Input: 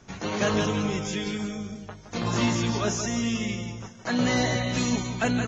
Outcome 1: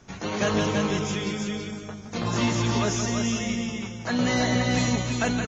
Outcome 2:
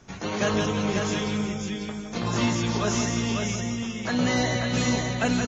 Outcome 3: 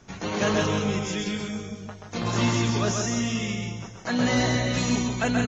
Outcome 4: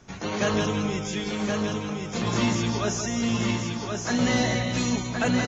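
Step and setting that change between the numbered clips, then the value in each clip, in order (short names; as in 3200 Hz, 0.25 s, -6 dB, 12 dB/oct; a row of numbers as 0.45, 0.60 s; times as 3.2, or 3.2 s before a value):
echo, time: 0.332, 0.546, 0.131, 1.071 s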